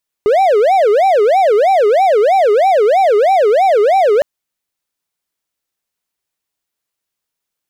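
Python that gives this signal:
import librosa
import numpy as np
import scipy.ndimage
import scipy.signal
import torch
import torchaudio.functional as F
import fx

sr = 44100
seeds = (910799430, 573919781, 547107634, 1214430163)

y = fx.siren(sr, length_s=3.96, kind='wail', low_hz=407.0, high_hz=784.0, per_s=3.1, wave='triangle', level_db=-5.5)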